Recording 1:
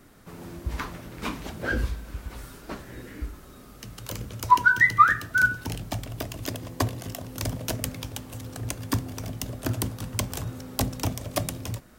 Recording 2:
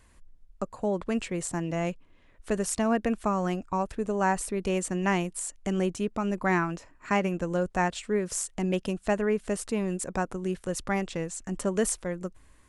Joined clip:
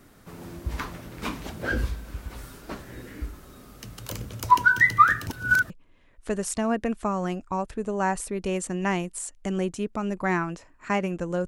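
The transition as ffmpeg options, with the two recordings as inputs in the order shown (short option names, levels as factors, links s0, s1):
-filter_complex "[0:a]apad=whole_dur=11.47,atrim=end=11.47,asplit=2[s0][s1];[s0]atrim=end=5.272[s2];[s1]atrim=start=5.268:end=5.702,asetpts=PTS-STARTPTS,areverse[s3];[1:a]atrim=start=1.908:end=7.68[s4];[s2][s3]acrossfade=d=0.004:c1=hsin:c2=hsin[s5];[s5][s4]acrossfade=d=0.004:c1=hsin:c2=hsin"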